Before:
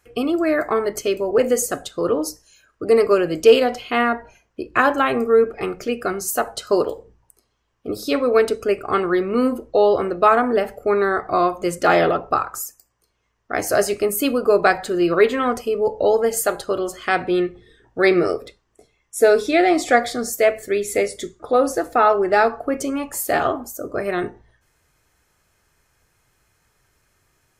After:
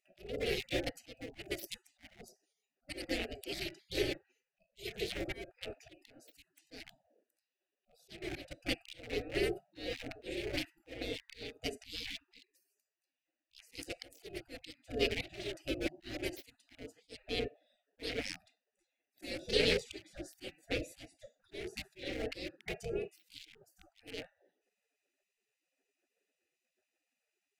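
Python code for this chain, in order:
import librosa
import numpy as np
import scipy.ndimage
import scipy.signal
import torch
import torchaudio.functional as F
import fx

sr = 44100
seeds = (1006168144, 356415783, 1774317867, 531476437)

y = fx.wiener(x, sr, points=41)
y = fx.auto_swell(y, sr, attack_ms=398.0)
y = fx.spec_gate(y, sr, threshold_db=-30, keep='weak')
y = fx.curve_eq(y, sr, hz=(190.0, 410.0, 720.0, 1000.0, 2100.0), db=(0, 14, -3, -27, -3))
y = F.gain(torch.from_numpy(y), 9.5).numpy()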